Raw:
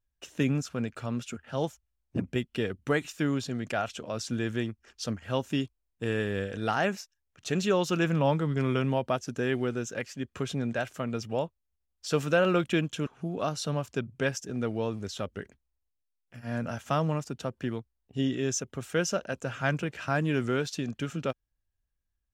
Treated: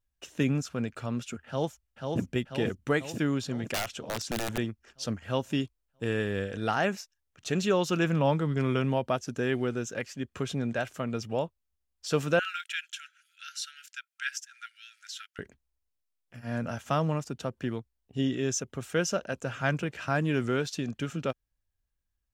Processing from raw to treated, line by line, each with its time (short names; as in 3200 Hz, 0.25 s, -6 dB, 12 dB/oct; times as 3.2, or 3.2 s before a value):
1.47–2.2 echo throw 0.49 s, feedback 60%, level -3.5 dB
3.74–4.58 wrapped overs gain 24 dB
12.39–15.39 brick-wall FIR high-pass 1300 Hz